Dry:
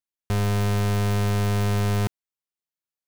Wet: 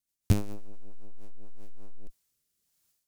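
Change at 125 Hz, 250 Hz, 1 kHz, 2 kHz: −12.5, −10.5, −21.5, −20.5 decibels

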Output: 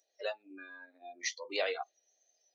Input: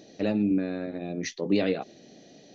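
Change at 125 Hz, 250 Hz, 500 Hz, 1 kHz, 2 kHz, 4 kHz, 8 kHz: below −40 dB, −28.0 dB, −8.5 dB, −2.5 dB, −1.0 dB, −0.5 dB, can't be measured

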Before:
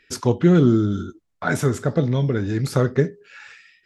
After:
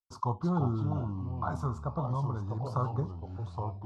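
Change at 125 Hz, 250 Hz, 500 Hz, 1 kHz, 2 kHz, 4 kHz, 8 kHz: −10.0 dB, −15.5 dB, −17.0 dB, −3.0 dB, −22.5 dB, below −20 dB, below −20 dB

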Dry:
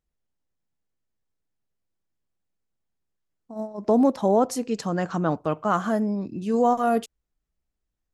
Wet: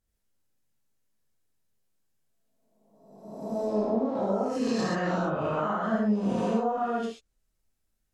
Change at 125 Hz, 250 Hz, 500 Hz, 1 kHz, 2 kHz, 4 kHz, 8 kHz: −2.5, −3.5, −4.0, −5.0, 0.0, −0.5, −8.0 decibels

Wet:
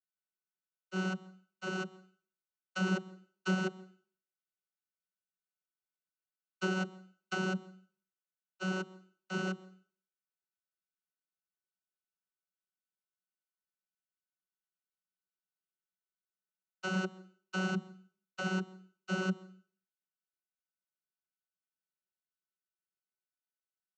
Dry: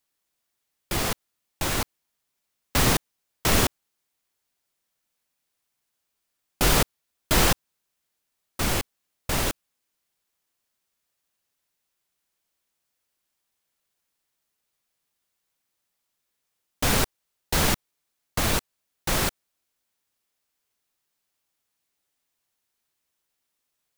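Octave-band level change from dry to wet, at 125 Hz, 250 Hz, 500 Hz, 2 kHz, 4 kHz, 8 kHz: −9.5, −4.5, −9.5, −8.0, −17.5, −24.5 decibels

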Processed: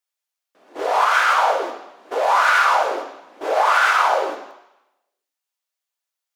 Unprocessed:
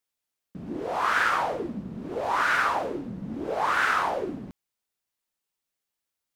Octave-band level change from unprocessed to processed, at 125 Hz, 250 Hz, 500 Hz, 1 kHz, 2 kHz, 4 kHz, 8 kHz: below −25 dB, −6.5 dB, +9.0 dB, +9.5 dB, +7.0 dB, +9.5 dB, +9.5 dB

